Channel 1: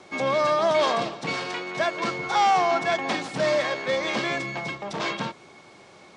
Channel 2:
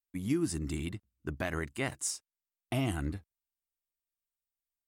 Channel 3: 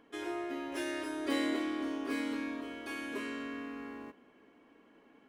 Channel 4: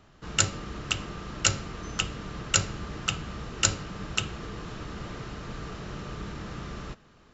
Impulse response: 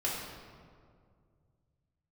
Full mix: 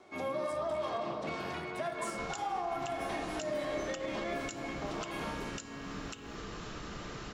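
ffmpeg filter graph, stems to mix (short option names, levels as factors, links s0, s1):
-filter_complex "[0:a]highshelf=f=2400:g=-10.5,volume=0.266,asplit=2[s0][s1];[s1]volume=0.596[s2];[1:a]volume=0.237,asplit=2[s3][s4];[s4]volume=0.133[s5];[2:a]adelay=2250,volume=1.12[s6];[3:a]adelay=1950,volume=0.75[s7];[s3][s6]amix=inputs=2:normalize=0,acompressor=threshold=0.00398:ratio=2,volume=1[s8];[s0][s7]amix=inputs=2:normalize=0,equalizer=f=84:w=0.62:g=-6.5,acompressor=threshold=0.0141:ratio=6,volume=1[s9];[4:a]atrim=start_sample=2205[s10];[s2][s5]amix=inputs=2:normalize=0[s11];[s11][s10]afir=irnorm=-1:irlink=0[s12];[s8][s9][s12]amix=inputs=3:normalize=0,highshelf=f=5900:g=6,alimiter=level_in=1.41:limit=0.0631:level=0:latency=1:release=131,volume=0.708"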